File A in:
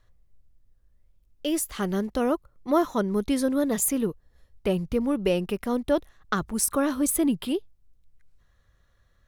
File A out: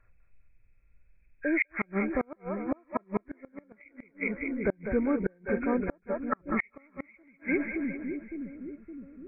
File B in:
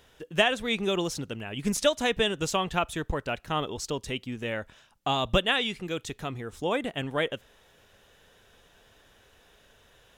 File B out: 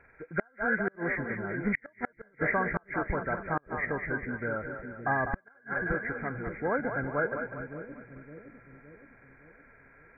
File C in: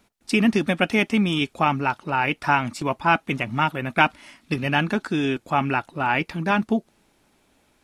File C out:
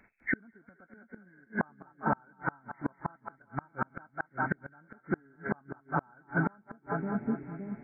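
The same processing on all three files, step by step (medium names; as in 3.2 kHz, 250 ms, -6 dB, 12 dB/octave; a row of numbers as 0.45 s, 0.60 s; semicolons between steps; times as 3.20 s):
knee-point frequency compression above 1.3 kHz 4:1; two-band feedback delay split 430 Hz, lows 565 ms, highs 199 ms, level -7 dB; inverted gate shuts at -14 dBFS, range -36 dB; trim -2 dB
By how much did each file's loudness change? -5.5 LU, -3.5 LU, -13.0 LU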